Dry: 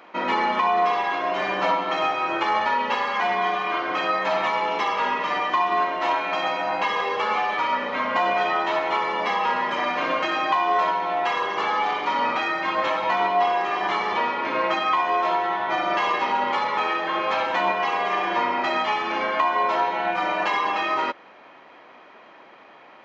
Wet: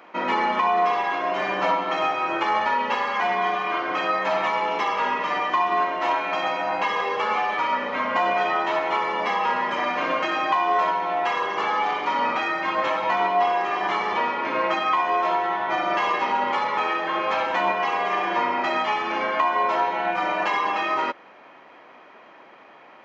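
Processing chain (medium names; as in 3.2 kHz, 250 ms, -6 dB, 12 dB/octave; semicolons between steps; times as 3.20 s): high-pass 68 Hz; peaking EQ 3.9 kHz -3.5 dB 0.58 oct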